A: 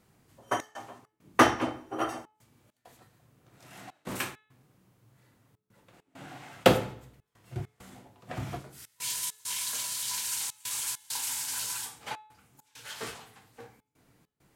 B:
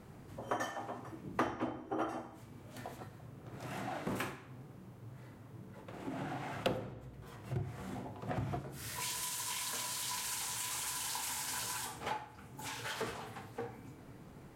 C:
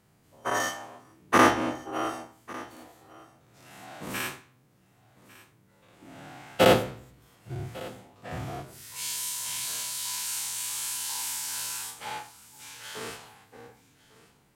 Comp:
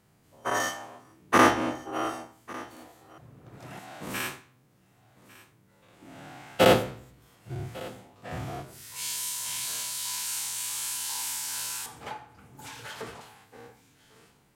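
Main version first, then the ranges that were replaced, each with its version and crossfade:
C
0:03.18–0:03.79: punch in from B
0:11.86–0:13.21: punch in from B
not used: A

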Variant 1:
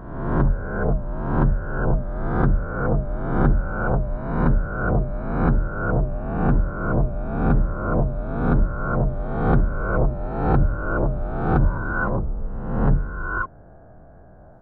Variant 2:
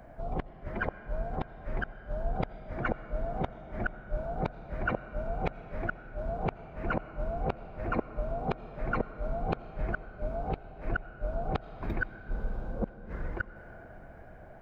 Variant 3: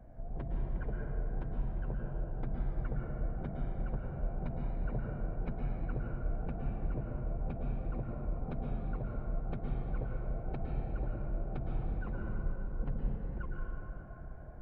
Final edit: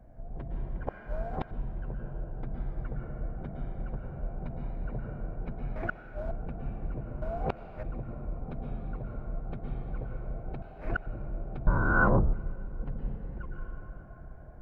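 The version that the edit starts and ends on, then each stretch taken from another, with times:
3
0:00.87–0:01.51: punch in from 2
0:05.76–0:06.31: punch in from 2
0:07.22–0:07.83: punch in from 2
0:10.62–0:11.06: punch in from 2
0:11.67–0:12.33: punch in from 1

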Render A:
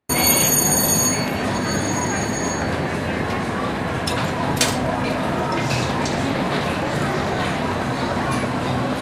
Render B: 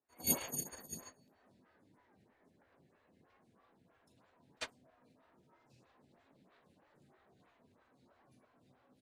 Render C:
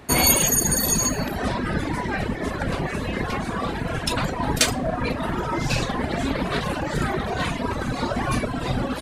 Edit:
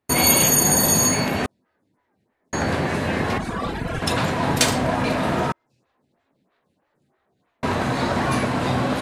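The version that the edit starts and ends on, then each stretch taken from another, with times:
A
0:01.46–0:02.53: punch in from B
0:03.38–0:04.02: punch in from C
0:05.52–0:07.63: punch in from B

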